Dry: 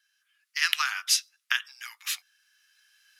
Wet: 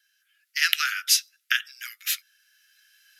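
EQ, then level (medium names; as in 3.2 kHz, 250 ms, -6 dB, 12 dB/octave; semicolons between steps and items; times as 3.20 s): steep high-pass 1.3 kHz 96 dB/octave; peaking EQ 13 kHz +10.5 dB 0.21 oct; +3.0 dB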